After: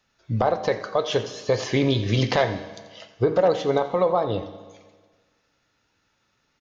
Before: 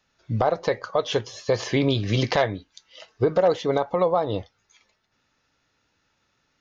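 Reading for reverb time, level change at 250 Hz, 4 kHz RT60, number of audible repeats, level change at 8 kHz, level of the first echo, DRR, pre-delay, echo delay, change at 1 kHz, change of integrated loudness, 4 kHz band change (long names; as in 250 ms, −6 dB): 1.5 s, +0.5 dB, 1.5 s, 1, can't be measured, −15.0 dB, 9.0 dB, 6 ms, 87 ms, +0.5 dB, +0.5 dB, +0.5 dB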